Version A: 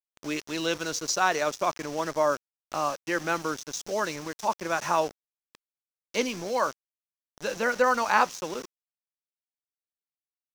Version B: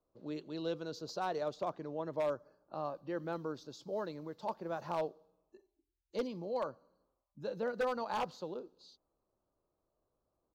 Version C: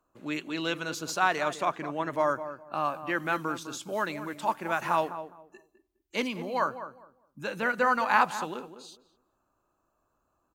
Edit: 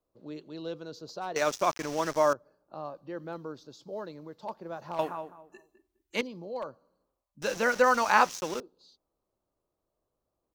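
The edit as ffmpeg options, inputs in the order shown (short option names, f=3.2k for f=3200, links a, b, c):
-filter_complex "[0:a]asplit=2[a][b];[1:a]asplit=4[c][d][e][f];[c]atrim=end=1.362[g];[a]atrim=start=1.358:end=2.332[h];[d]atrim=start=2.328:end=4.992[i];[2:a]atrim=start=4.988:end=6.212[j];[e]atrim=start=6.208:end=7.422[k];[b]atrim=start=7.418:end=8.602[l];[f]atrim=start=8.598[m];[g][h]acrossfade=d=0.004:c1=hsin:c2=hsin[n];[n][i]acrossfade=d=0.004:c1=hsin:c2=hsin[o];[o][j]acrossfade=d=0.004:c1=hsin:c2=hsin[p];[p][k]acrossfade=d=0.004:c1=hsin:c2=hsin[q];[q][l]acrossfade=d=0.004:c1=hsin:c2=hsin[r];[r][m]acrossfade=d=0.004:c1=hsin:c2=hsin"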